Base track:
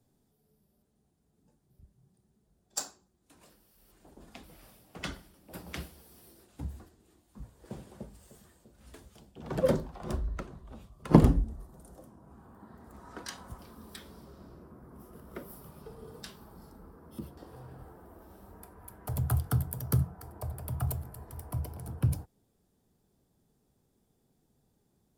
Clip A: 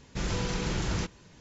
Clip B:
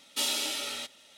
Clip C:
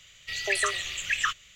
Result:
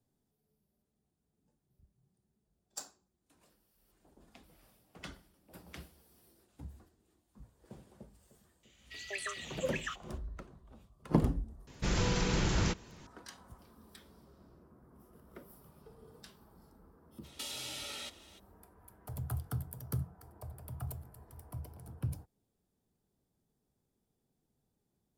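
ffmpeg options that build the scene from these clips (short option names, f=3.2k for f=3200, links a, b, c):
-filter_complex "[0:a]volume=-9dB[a];[3:a]highpass=45[b];[2:a]acompressor=threshold=-41dB:ratio=6:attack=30:release=45:knee=1:detection=rms[c];[b]atrim=end=1.55,asetpts=PTS-STARTPTS,volume=-13.5dB,afade=t=in:d=0.004:c=hsin,afade=t=out:st=1.546:d=0.004:c=hsin,adelay=8630[d];[1:a]atrim=end=1.4,asetpts=PTS-STARTPTS,afade=t=in:d=0.004:c=hsin,afade=t=out:st=1.396:d=0.004:c=hsin,adelay=11670[e];[c]atrim=end=1.17,asetpts=PTS-STARTPTS,volume=-2.5dB,afade=t=in:d=0.02,afade=t=out:st=1.15:d=0.02,adelay=17230[f];[a][d][e][f]amix=inputs=4:normalize=0"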